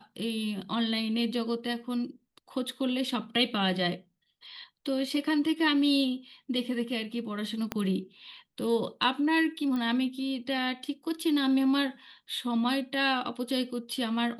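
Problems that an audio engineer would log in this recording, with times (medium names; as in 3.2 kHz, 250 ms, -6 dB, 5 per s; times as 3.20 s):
7.72 s: pop -15 dBFS
9.76 s: pop -23 dBFS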